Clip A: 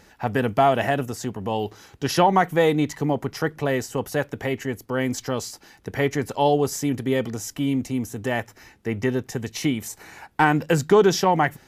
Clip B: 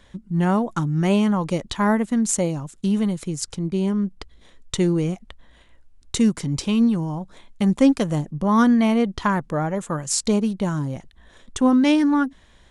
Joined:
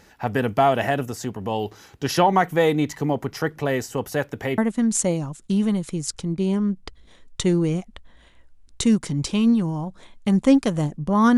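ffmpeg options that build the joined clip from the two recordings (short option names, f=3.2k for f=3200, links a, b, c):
-filter_complex "[0:a]apad=whole_dur=11.37,atrim=end=11.37,atrim=end=4.582[a];[1:a]atrim=start=1.918:end=8.71[b];[a][b]acrossfade=d=0.004:c1=hsin:c2=hsin"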